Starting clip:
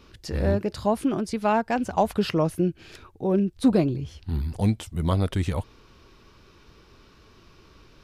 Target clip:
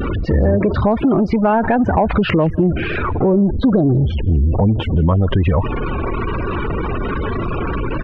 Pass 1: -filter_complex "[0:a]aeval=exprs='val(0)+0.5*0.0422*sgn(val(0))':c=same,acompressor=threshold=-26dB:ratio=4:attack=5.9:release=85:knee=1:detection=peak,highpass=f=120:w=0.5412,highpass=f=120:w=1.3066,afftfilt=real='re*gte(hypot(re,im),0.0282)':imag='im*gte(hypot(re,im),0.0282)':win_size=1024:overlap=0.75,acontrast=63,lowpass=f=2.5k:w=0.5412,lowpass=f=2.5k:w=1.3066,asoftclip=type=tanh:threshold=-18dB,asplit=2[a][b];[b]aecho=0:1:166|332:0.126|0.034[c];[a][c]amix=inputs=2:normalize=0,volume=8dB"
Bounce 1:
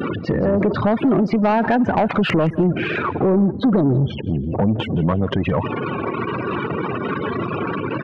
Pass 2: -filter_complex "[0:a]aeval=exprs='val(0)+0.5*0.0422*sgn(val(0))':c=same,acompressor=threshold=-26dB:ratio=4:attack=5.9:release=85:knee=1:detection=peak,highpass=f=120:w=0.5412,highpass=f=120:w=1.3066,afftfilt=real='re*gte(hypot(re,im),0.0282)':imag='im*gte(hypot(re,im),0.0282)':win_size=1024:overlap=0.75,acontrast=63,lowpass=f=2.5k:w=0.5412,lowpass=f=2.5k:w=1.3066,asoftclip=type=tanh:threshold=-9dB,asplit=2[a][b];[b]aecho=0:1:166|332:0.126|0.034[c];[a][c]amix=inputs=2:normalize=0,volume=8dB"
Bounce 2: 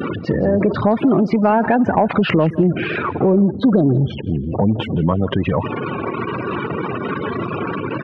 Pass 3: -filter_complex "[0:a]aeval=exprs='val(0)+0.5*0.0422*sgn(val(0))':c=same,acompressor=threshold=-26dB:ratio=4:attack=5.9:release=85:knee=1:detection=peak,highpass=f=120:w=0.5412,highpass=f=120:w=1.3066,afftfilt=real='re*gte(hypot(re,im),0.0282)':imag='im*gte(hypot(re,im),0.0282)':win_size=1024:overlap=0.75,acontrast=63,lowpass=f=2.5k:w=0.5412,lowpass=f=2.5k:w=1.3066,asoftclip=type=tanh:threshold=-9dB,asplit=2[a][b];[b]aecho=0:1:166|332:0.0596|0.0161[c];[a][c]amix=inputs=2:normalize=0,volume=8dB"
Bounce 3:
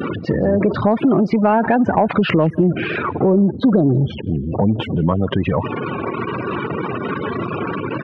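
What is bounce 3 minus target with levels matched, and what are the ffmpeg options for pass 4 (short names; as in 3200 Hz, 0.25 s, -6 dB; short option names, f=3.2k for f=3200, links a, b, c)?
125 Hz band -3.0 dB
-filter_complex "[0:a]aeval=exprs='val(0)+0.5*0.0422*sgn(val(0))':c=same,acompressor=threshold=-26dB:ratio=4:attack=5.9:release=85:knee=1:detection=peak,afftfilt=real='re*gte(hypot(re,im),0.0282)':imag='im*gte(hypot(re,im),0.0282)':win_size=1024:overlap=0.75,acontrast=63,lowpass=f=2.5k:w=0.5412,lowpass=f=2.5k:w=1.3066,asoftclip=type=tanh:threshold=-9dB,asplit=2[a][b];[b]aecho=0:1:166|332:0.0596|0.0161[c];[a][c]amix=inputs=2:normalize=0,volume=8dB"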